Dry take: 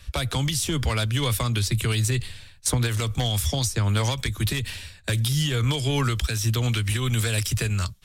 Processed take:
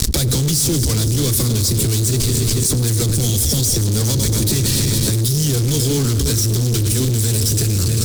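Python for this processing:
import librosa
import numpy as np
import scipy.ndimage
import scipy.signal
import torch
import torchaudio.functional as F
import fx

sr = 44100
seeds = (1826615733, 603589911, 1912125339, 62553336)

y = fx.reverse_delay_fb(x, sr, ms=139, feedback_pct=83, wet_db=-12)
y = fx.low_shelf(y, sr, hz=140.0, db=-4.5)
y = fx.fuzz(y, sr, gain_db=39.0, gate_db=-47.0)
y = fx.band_shelf(y, sr, hz=1400.0, db=-15.5, octaves=2.8)
y = y + 10.0 ** (-17.5 / 20.0) * np.pad(y, (int(104 * sr / 1000.0), 0))[:len(y)]
y = fx.env_flatten(y, sr, amount_pct=100)
y = y * 10.0 ** (-3.0 / 20.0)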